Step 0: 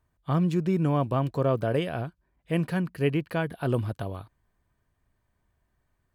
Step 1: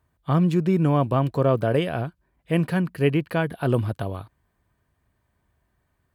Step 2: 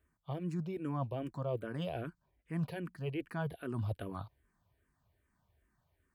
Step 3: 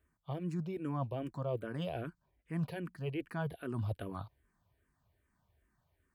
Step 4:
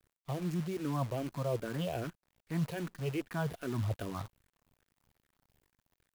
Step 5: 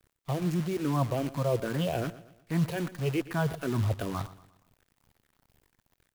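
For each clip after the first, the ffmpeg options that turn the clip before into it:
-af "highpass=46,equalizer=f=6.1k:w=1.6:g=-3,volume=4.5dB"
-filter_complex "[0:a]areverse,acompressor=threshold=-29dB:ratio=5,areverse,asplit=2[a][b];[b]afreqshift=-2.5[c];[a][c]amix=inputs=2:normalize=1,volume=-3dB"
-af anull
-af "acrusher=bits=9:dc=4:mix=0:aa=0.000001,volume=2.5dB"
-af "aecho=1:1:118|236|354|472:0.141|0.0593|0.0249|0.0105,volume=6dB"

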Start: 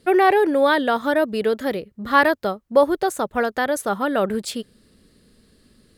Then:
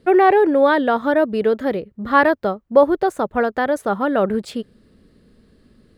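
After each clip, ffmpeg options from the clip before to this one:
-af "equalizer=f=12k:t=o:w=2.7:g=-14.5,volume=3.5dB"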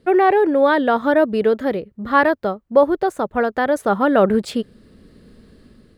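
-af "dynaudnorm=f=330:g=5:m=9dB,volume=-1.5dB"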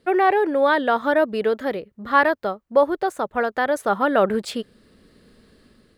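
-af "lowshelf=f=430:g=-9"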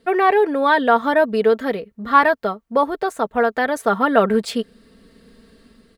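-af "aecho=1:1:4.4:0.53,volume=2dB"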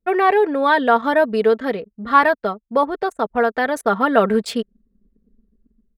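-af "anlmdn=2.51"

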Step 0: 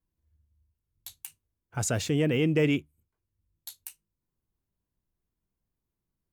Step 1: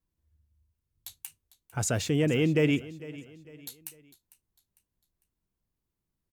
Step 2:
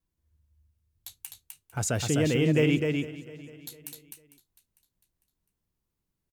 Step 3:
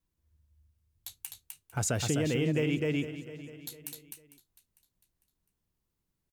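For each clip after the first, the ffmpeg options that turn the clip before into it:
-af "aecho=1:1:451|902|1353:0.126|0.0491|0.0191"
-af "aecho=1:1:255:0.631"
-af "acompressor=threshold=-25dB:ratio=6"

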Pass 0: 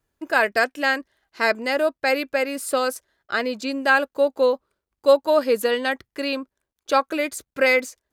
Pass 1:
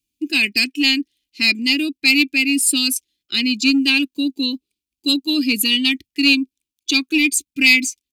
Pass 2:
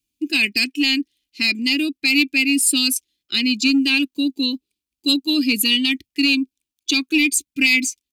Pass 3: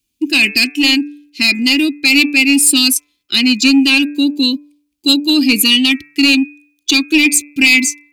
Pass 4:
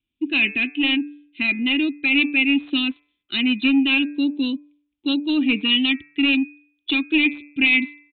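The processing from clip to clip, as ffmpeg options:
-filter_complex "[0:a]afftdn=nr=13:nf=-38,firequalizer=gain_entry='entry(140,0);entry(290,11);entry(520,-28);entry(1600,-19);entry(2400,14)':delay=0.05:min_phase=1,asplit=2[a][b];[b]asoftclip=type=hard:threshold=-14.5dB,volume=-6.5dB[c];[a][c]amix=inputs=2:normalize=0,volume=-1dB"
-af "alimiter=limit=-7.5dB:level=0:latency=1"
-af "bandreject=f=146.2:t=h:w=4,bandreject=f=292.4:t=h:w=4,bandreject=f=438.6:t=h:w=4,bandreject=f=584.8:t=h:w=4,bandreject=f=731:t=h:w=4,bandreject=f=877.2:t=h:w=4,bandreject=f=1.0234k:t=h:w=4,bandreject=f=1.1696k:t=h:w=4,bandreject=f=1.3158k:t=h:w=4,bandreject=f=1.462k:t=h:w=4,bandreject=f=1.6082k:t=h:w=4,bandreject=f=1.7544k:t=h:w=4,bandreject=f=1.9006k:t=h:w=4,bandreject=f=2.0468k:t=h:w=4,bandreject=f=2.193k:t=h:w=4,bandreject=f=2.3392k:t=h:w=4,bandreject=f=2.4854k:t=h:w=4,bandreject=f=2.6316k:t=h:w=4,acontrast=78,volume=1dB"
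-af "aresample=8000,aresample=44100,volume=-7dB"

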